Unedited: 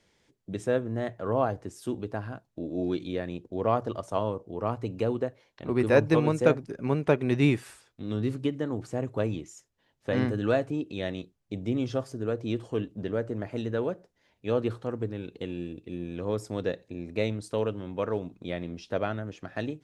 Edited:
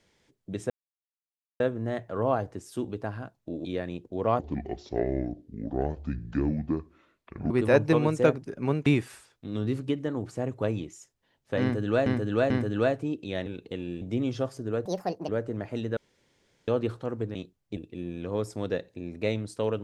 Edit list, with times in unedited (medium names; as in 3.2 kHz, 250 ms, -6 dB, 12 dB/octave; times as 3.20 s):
0.70 s: insert silence 0.90 s
2.75–3.05 s: delete
3.79–5.72 s: speed 62%
7.08–7.42 s: delete
10.18–10.62 s: loop, 3 plays
11.14–11.56 s: swap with 15.16–15.71 s
12.40–13.10 s: speed 161%
13.78–14.49 s: room tone